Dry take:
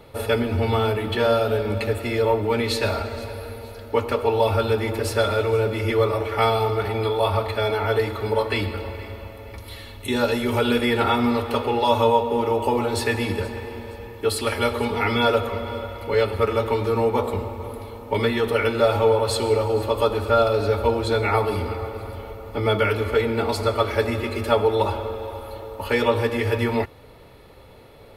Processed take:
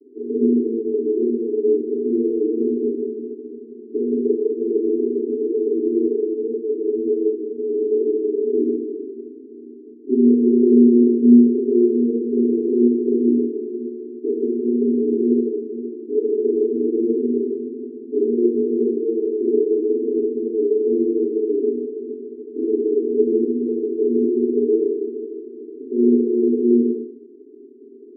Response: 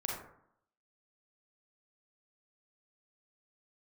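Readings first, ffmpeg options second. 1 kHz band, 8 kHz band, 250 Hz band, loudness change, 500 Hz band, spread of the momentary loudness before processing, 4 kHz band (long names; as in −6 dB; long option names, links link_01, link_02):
below −40 dB, below −40 dB, +10.5 dB, +3.0 dB, +2.5 dB, 14 LU, below −40 dB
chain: -filter_complex "[0:a]asuperpass=centerf=320:order=20:qfactor=1.7[link_01];[1:a]atrim=start_sample=2205[link_02];[link_01][link_02]afir=irnorm=-1:irlink=0,volume=8.5dB"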